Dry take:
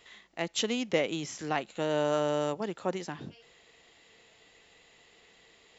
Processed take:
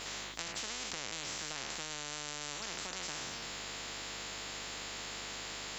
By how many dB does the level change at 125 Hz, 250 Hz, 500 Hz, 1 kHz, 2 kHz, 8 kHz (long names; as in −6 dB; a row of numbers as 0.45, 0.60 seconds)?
−11.0 dB, −15.5 dB, −17.5 dB, −8.0 dB, −2.0 dB, can't be measured